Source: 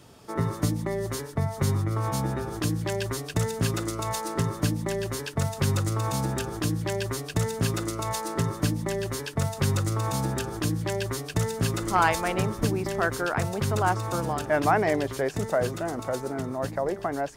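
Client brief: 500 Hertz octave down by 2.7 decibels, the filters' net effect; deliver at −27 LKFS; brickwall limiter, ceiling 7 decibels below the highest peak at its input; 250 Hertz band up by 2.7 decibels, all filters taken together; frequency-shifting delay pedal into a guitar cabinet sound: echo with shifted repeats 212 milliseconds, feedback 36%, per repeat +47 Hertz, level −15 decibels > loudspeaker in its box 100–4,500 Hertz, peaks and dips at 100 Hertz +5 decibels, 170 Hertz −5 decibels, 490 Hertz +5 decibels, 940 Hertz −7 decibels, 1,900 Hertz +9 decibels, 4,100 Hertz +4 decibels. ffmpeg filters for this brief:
ffmpeg -i in.wav -filter_complex "[0:a]equalizer=frequency=250:width_type=o:gain=8,equalizer=frequency=500:width_type=o:gain=-8.5,alimiter=limit=-16.5dB:level=0:latency=1,asplit=4[link_01][link_02][link_03][link_04];[link_02]adelay=212,afreqshift=47,volume=-15dB[link_05];[link_03]adelay=424,afreqshift=94,volume=-23.9dB[link_06];[link_04]adelay=636,afreqshift=141,volume=-32.7dB[link_07];[link_01][link_05][link_06][link_07]amix=inputs=4:normalize=0,highpass=100,equalizer=frequency=100:width_type=q:width=4:gain=5,equalizer=frequency=170:width_type=q:width=4:gain=-5,equalizer=frequency=490:width_type=q:width=4:gain=5,equalizer=frequency=940:width_type=q:width=4:gain=-7,equalizer=frequency=1900:width_type=q:width=4:gain=9,equalizer=frequency=4100:width_type=q:width=4:gain=4,lowpass=frequency=4500:width=0.5412,lowpass=frequency=4500:width=1.3066,volume=1.5dB" out.wav

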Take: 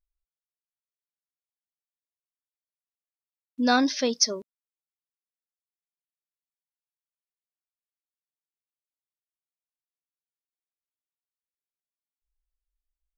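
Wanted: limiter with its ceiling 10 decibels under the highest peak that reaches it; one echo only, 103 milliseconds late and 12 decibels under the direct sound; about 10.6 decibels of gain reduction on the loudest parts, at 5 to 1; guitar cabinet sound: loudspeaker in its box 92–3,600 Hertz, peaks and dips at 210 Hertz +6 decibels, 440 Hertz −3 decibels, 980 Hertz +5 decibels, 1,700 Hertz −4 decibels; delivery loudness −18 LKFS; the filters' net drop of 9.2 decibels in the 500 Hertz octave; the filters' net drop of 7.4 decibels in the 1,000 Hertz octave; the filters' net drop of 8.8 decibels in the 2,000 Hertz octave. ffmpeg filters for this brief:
ffmpeg -i in.wav -af "equalizer=frequency=500:width_type=o:gain=-6.5,equalizer=frequency=1000:width_type=o:gain=-8.5,equalizer=frequency=2000:width_type=o:gain=-5.5,acompressor=threshold=-28dB:ratio=5,alimiter=level_in=2dB:limit=-24dB:level=0:latency=1,volume=-2dB,highpass=92,equalizer=frequency=210:width_type=q:width=4:gain=6,equalizer=frequency=440:width_type=q:width=4:gain=-3,equalizer=frequency=980:width_type=q:width=4:gain=5,equalizer=frequency=1700:width_type=q:width=4:gain=-4,lowpass=frequency=3600:width=0.5412,lowpass=frequency=3600:width=1.3066,aecho=1:1:103:0.251,volume=17dB" out.wav

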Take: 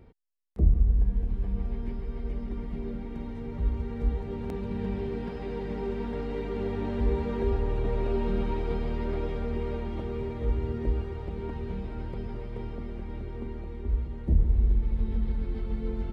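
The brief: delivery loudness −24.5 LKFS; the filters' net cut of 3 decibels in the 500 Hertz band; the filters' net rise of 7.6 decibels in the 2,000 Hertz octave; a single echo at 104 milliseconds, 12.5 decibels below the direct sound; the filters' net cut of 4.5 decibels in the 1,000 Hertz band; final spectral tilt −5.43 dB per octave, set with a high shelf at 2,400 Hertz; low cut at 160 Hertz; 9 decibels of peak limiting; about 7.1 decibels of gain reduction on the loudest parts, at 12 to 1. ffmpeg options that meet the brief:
ffmpeg -i in.wav -af "highpass=160,equalizer=frequency=500:width_type=o:gain=-3,equalizer=frequency=1000:width_type=o:gain=-7.5,equalizer=frequency=2000:width_type=o:gain=8,highshelf=frequency=2400:gain=6.5,acompressor=threshold=-35dB:ratio=12,alimiter=level_in=9.5dB:limit=-24dB:level=0:latency=1,volume=-9.5dB,aecho=1:1:104:0.237,volume=18dB" out.wav

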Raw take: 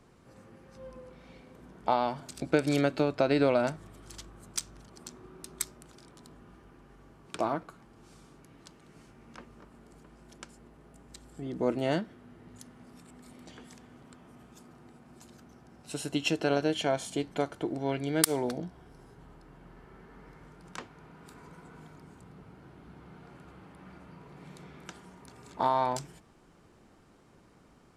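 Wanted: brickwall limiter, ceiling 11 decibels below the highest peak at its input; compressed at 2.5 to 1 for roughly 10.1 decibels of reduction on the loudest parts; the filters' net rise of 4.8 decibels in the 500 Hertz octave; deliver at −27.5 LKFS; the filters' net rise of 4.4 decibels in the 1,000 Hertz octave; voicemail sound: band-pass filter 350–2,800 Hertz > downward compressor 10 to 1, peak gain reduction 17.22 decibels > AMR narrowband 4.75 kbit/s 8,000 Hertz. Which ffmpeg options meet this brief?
ffmpeg -i in.wav -af "equalizer=frequency=500:width_type=o:gain=6,equalizer=frequency=1000:width_type=o:gain=3.5,acompressor=threshold=-31dB:ratio=2.5,alimiter=level_in=0.5dB:limit=-24dB:level=0:latency=1,volume=-0.5dB,highpass=350,lowpass=2800,acompressor=threshold=-47dB:ratio=10,volume=29dB" -ar 8000 -c:a libopencore_amrnb -b:a 4750 out.amr

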